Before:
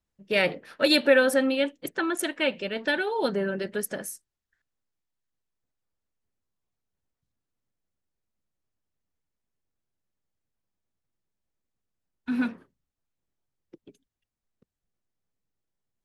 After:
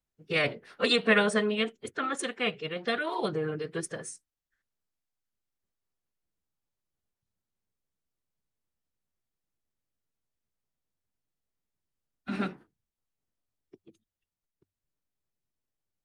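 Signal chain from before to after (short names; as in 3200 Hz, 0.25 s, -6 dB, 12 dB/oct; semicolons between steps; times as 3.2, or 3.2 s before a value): notches 60/120 Hz; formant-preserving pitch shift -4 st; gain -3.5 dB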